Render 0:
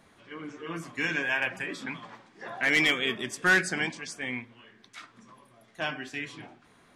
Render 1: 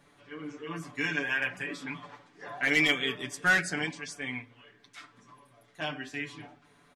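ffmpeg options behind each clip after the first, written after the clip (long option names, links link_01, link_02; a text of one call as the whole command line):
ffmpeg -i in.wav -af "aecho=1:1:6.9:0.76,volume=-4dB" out.wav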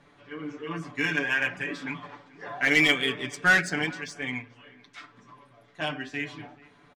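ffmpeg -i in.wav -filter_complex "[0:a]asplit=2[link_01][link_02];[link_02]adelay=437.3,volume=-22dB,highshelf=frequency=4000:gain=-9.84[link_03];[link_01][link_03]amix=inputs=2:normalize=0,adynamicsmooth=sensitivity=6:basefreq=5800,volume=4dB" out.wav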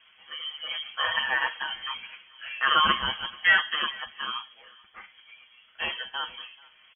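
ffmpeg -i in.wav -af "lowpass=frequency=2900:width_type=q:width=0.5098,lowpass=frequency=2900:width_type=q:width=0.6013,lowpass=frequency=2900:width_type=q:width=0.9,lowpass=frequency=2900:width_type=q:width=2.563,afreqshift=-3400" out.wav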